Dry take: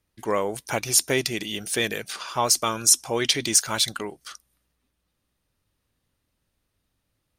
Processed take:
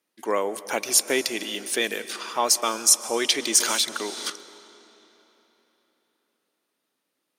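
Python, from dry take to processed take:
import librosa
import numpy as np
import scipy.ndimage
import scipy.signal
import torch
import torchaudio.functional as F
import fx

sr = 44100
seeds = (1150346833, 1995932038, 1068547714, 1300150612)

y = scipy.signal.sosfilt(scipy.signal.butter(4, 240.0, 'highpass', fs=sr, output='sos'), x)
y = fx.rev_freeverb(y, sr, rt60_s=3.8, hf_ratio=0.85, predelay_ms=95, drr_db=14.0)
y = fx.band_squash(y, sr, depth_pct=100, at=(3.6, 4.3))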